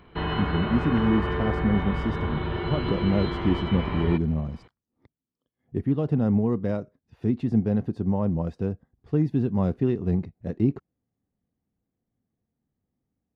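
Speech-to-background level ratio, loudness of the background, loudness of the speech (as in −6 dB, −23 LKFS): 3.0 dB, −29.5 LKFS, −26.5 LKFS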